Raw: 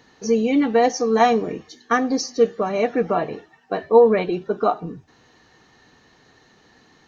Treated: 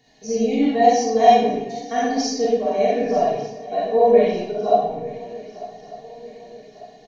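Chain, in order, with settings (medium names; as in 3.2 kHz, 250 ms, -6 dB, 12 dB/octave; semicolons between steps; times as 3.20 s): peaking EQ 120 Hz +11.5 dB 1.1 oct; static phaser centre 340 Hz, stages 6; comb 2.8 ms, depth 69%; shuffle delay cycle 1197 ms, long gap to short 3:1, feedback 45%, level -18.5 dB; algorithmic reverb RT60 0.82 s, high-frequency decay 0.8×, pre-delay 5 ms, DRR -8 dB; trim -7 dB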